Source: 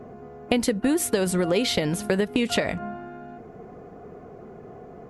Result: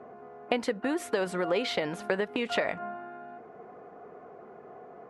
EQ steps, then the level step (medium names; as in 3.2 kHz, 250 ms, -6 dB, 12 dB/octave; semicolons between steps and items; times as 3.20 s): band-pass filter 1.1 kHz, Q 0.73; 0.0 dB